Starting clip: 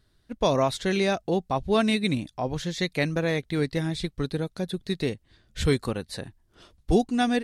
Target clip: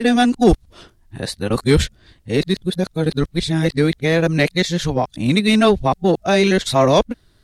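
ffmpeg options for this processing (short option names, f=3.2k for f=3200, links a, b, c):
-af "areverse,aeval=exprs='0.316*(cos(1*acos(clip(val(0)/0.316,-1,1)))-cos(1*PI/2))+0.0178*(cos(5*acos(clip(val(0)/0.316,-1,1)))-cos(5*PI/2))':c=same,volume=8dB"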